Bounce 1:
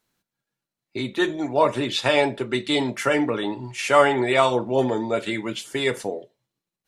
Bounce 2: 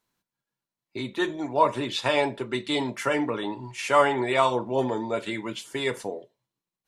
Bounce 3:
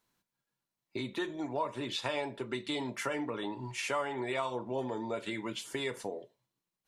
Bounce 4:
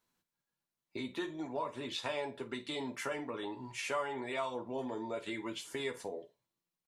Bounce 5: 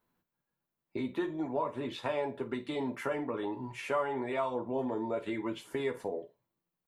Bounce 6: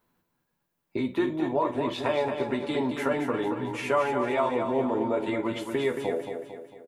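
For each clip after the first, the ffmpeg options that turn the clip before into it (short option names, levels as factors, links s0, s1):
-af "equalizer=f=1000:t=o:w=0.25:g=7,volume=0.596"
-af "acompressor=threshold=0.0178:ratio=3"
-af "aecho=1:1:12|51:0.447|0.168,volume=0.631"
-af "equalizer=f=6200:w=0.43:g=-15,volume=2"
-af "aecho=1:1:225|450|675|900|1125|1350:0.473|0.222|0.105|0.0491|0.0231|0.0109,volume=2.11"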